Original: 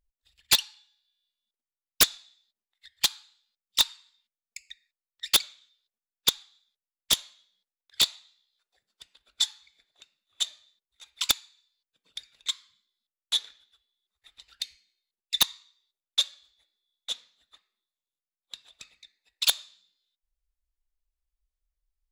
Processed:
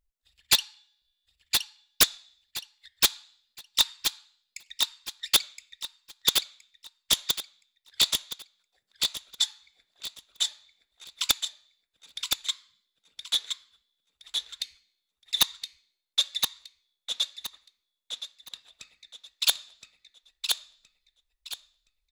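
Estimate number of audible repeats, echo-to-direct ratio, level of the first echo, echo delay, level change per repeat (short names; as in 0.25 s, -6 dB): 3, -3.5 dB, -4.0 dB, 1.019 s, -11.0 dB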